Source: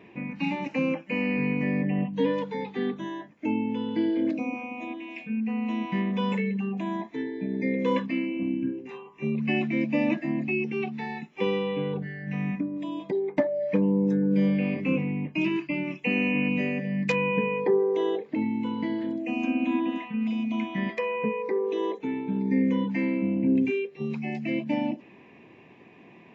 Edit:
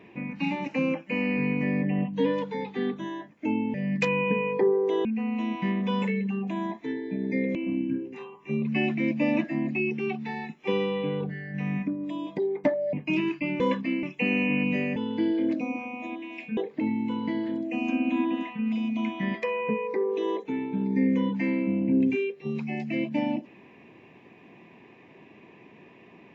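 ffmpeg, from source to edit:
-filter_complex "[0:a]asplit=9[a][b][c][d][e][f][g][h][i];[a]atrim=end=3.742[j];[b]atrim=start=16.808:end=18.122[k];[c]atrim=start=5.348:end=7.852[l];[d]atrim=start=8.278:end=13.662[m];[e]atrim=start=15.208:end=15.882[n];[f]atrim=start=7.848:end=8.282[o];[g]atrim=start=15.878:end=16.812[p];[h]atrim=start=3.738:end=5.352[q];[i]atrim=start=18.118[r];[j][k]acrossfade=d=0.004:c1=hsin:c2=hsin[s];[s][l]acrossfade=d=0.004:c1=hsin:c2=hsin[t];[t][m]acrossfade=d=0.004:c1=hsin:c2=hsin[u];[u][n]acrossfade=d=0.004:c1=hsin:c2=hsin[v];[v][o]acrossfade=d=0.004:c1=hsin:c2=hsin[w];[w][p]acrossfade=d=0.004:c1=hsin:c2=hsin[x];[x][q]acrossfade=d=0.004:c1=hsin:c2=hsin[y];[y][r]acrossfade=d=0.004:c1=hsin:c2=hsin"

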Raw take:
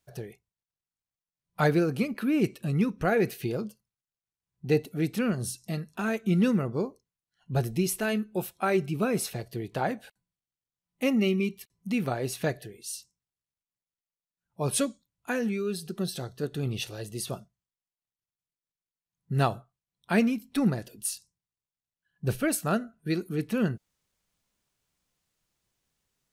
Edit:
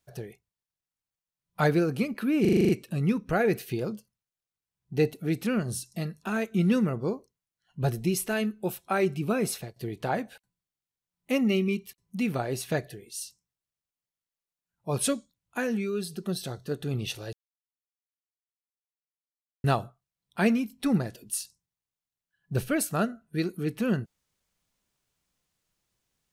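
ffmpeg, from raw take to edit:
-filter_complex "[0:a]asplit=11[a][b][c][d][e][f][g][h][i][j][k];[a]atrim=end=2.452[l];[b]atrim=start=2.408:end=2.452[m];[c]atrim=start=2.408:end=2.452[n];[d]atrim=start=2.408:end=2.452[o];[e]atrim=start=2.408:end=2.452[p];[f]atrim=start=2.408:end=2.452[q];[g]atrim=start=2.408:end=2.452[r];[h]atrim=start=2.408:end=9.48,asetpts=PTS-STARTPTS,afade=t=out:st=6.792:d=0.28:c=qsin:silence=0.0794328[s];[i]atrim=start=9.48:end=17.05,asetpts=PTS-STARTPTS,afade=t=in:d=0.004:c=hsin:silence=0.0794328,afade=t=out:st=7.566:d=0.004:c=hsin[t];[j]atrim=start=17.05:end=19.36,asetpts=PTS-STARTPTS,volume=0[u];[k]atrim=start=19.36,asetpts=PTS-STARTPTS,afade=t=in:d=0.004:c=hsin[v];[l][m]acrossfade=d=0.004:c1=hsin:c2=hsin[w];[w][n]acrossfade=d=0.004:c1=hsin:c2=hsin[x];[x][o]acrossfade=d=0.004:c1=hsin:c2=hsin[y];[y][p]acrossfade=d=0.004:c1=hsin:c2=hsin[z];[z][q]acrossfade=d=0.004:c1=hsin:c2=hsin[aa];[aa][r]acrossfade=d=0.004:c1=hsin:c2=hsin[ab];[s][t][u][v]concat=n=4:v=0:a=1[ac];[ab][ac]acrossfade=d=0.004:c1=hsin:c2=hsin"

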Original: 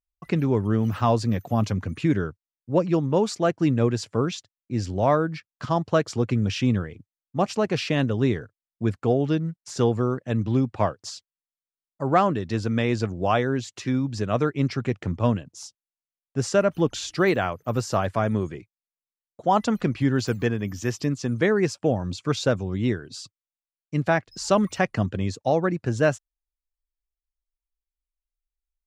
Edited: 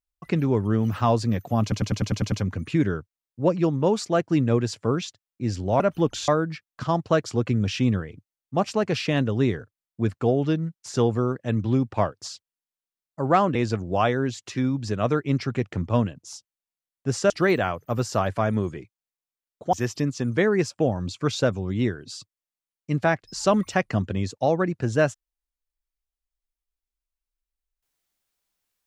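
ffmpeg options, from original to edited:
-filter_complex "[0:a]asplit=13[a][b][c][d][e][f][g][h][i][j][k][l][m];[a]atrim=end=1.722[n];[b]atrim=start=1.618:end=1.722[o];[c]atrim=start=1.618:end=1.722[p];[d]atrim=start=1.618:end=1.722[q];[e]atrim=start=1.618:end=1.722[r];[f]atrim=start=1.618:end=1.722[s];[g]atrim=start=1.618:end=1.722[t];[h]atrim=start=1.618:end=5.102[u];[i]atrim=start=16.598:end=17.082[v];[j]atrim=start=5.098:end=12.372[w];[k]atrim=start=12.848:end=16.602[x];[l]atrim=start=17.078:end=19.512[y];[m]atrim=start=20.768[z];[n][o]acrossfade=d=0.004:c1=hsin:c2=hsin[aa];[aa][p]acrossfade=d=0.004:c1=hsin:c2=hsin[ab];[ab][q]acrossfade=d=0.004:c1=hsin:c2=hsin[ac];[ac][r]acrossfade=d=0.004:c1=hsin:c2=hsin[ad];[ad][s]acrossfade=d=0.004:c1=hsin:c2=hsin[ae];[ae][t]acrossfade=d=0.004:c1=hsin:c2=hsin[af];[af][u]acrossfade=d=0.004:c1=hsin:c2=hsin[ag];[ag][v]acrossfade=d=0.004:c1=hsin:c2=hsin[ah];[ah][w]acrossfade=d=0.004:c1=hsin:c2=hsin[ai];[ai][x]acrossfade=d=0.004:c1=hsin:c2=hsin[aj];[aj][y]acrossfade=d=0.004:c1=hsin:c2=hsin[ak];[ak][z]acrossfade=d=0.004:c1=hsin:c2=hsin"

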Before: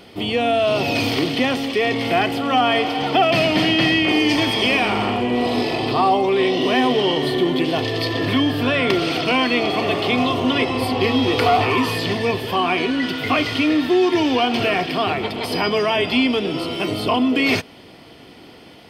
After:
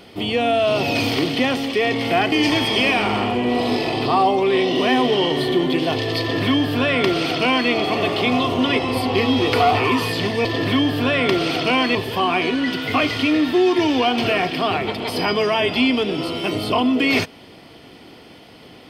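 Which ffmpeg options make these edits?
-filter_complex "[0:a]asplit=4[a][b][c][d];[a]atrim=end=2.322[e];[b]atrim=start=4.178:end=12.312[f];[c]atrim=start=8.058:end=9.562[g];[d]atrim=start=12.308[h];[e][f]acrossfade=d=0.004:c1=hsin:c2=hsin[i];[i][g]acrossfade=d=0.004:c1=hsin:c2=hsin[j];[j][h]acrossfade=d=0.004:c1=hsin:c2=hsin"

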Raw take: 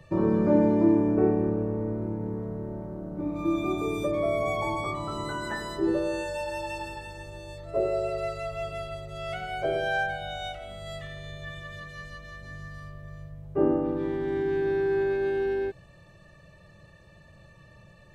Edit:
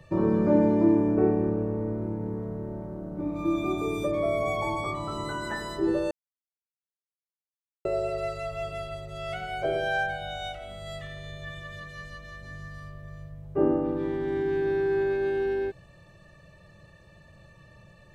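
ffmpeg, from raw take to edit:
-filter_complex "[0:a]asplit=3[a][b][c];[a]atrim=end=6.11,asetpts=PTS-STARTPTS,afade=t=out:st=6.106:d=0.004:c=hsin[d];[b]atrim=start=6.11:end=7.85,asetpts=PTS-STARTPTS,volume=0[e];[c]atrim=start=7.85,asetpts=PTS-STARTPTS,afade=t=in:d=0.004:c=hsin[f];[d][e][f]concat=n=3:v=0:a=1"

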